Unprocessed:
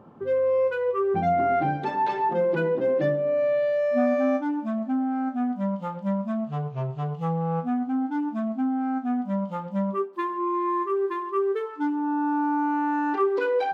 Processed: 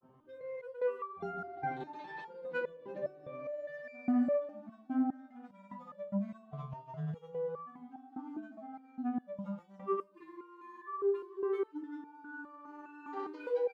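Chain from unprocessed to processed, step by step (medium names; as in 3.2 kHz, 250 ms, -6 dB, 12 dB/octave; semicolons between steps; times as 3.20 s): granulator, pitch spread up and down by 0 st; echo from a far wall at 34 m, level -17 dB; resonator arpeggio 4.9 Hz 130–580 Hz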